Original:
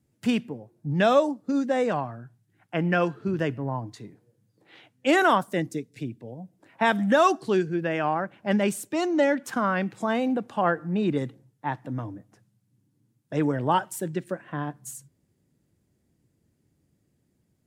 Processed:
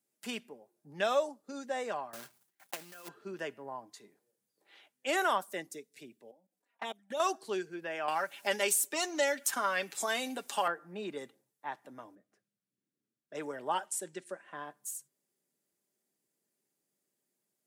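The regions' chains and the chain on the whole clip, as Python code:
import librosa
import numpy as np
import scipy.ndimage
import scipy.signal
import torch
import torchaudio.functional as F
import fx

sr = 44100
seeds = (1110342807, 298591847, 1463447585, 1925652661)

y = fx.chain(x, sr, fx.block_float(bits=3),
    fx.gate_hold(open_db=-56.0, close_db=-66.0, hold_ms=71.0, range_db=-21, attack_ms=1.4, release_ms=100.0),
    fx.over_compress(threshold_db=-31.0, ratio=-0.5), at=(2.13, 3.09))
y = fx.chain(y, sr, fx.level_steps(step_db=23),
    fx.env_flanger(rest_ms=4.4, full_db=-22.0), at=(6.31, 7.2))
y = fx.chain(y, sr, fx.high_shelf(hz=2600.0, db=12.0),
    fx.comb(ms=7.2, depth=0.48),
    fx.band_squash(depth_pct=70), at=(8.08, 10.68))
y = fx.chain(y, sr, fx.lowpass(hz=1900.0, slope=6),
    fx.peak_eq(hz=890.0, db=-15.0, octaves=0.43), at=(12.15, 13.35))
y = fx.chain(y, sr, fx.lowpass(hz=9500.0, slope=24),
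    fx.high_shelf(hz=7200.0, db=7.0), at=(13.87, 14.65))
y = scipy.signal.sosfilt(scipy.signal.butter(2, 440.0, 'highpass', fs=sr, output='sos'), y)
y = fx.high_shelf(y, sr, hz=6100.0, db=11.0)
y = y + 0.31 * np.pad(y, (int(5.0 * sr / 1000.0), 0))[:len(y)]
y = F.gain(torch.from_numpy(y), -9.0).numpy()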